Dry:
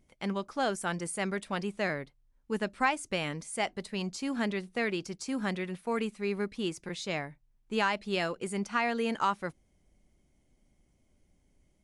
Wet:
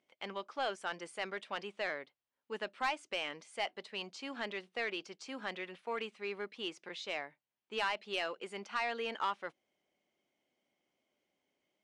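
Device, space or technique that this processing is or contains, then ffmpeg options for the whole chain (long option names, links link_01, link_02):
intercom: -af "highpass=450,lowpass=4400,equalizer=frequency=3000:width_type=o:width=0.47:gain=5,asoftclip=type=tanh:threshold=-22dB,volume=-3.5dB"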